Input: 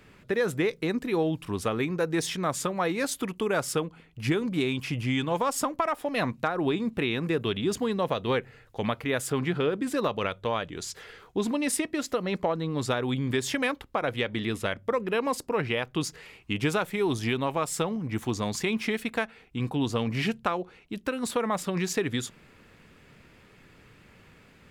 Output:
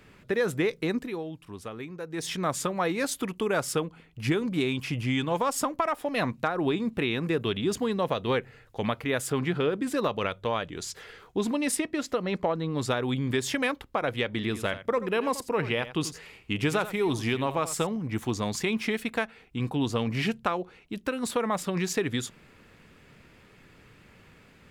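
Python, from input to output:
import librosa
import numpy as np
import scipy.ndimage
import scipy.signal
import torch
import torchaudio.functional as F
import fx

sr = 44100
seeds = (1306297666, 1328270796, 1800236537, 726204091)

y = fx.high_shelf(x, sr, hz=8000.0, db=-7.5, at=(11.75, 12.75))
y = fx.echo_single(y, sr, ms=86, db=-13.5, at=(14.33, 17.87))
y = fx.edit(y, sr, fx.fade_down_up(start_s=0.98, length_s=1.34, db=-10.5, fade_s=0.29, curve='qua'), tone=tone)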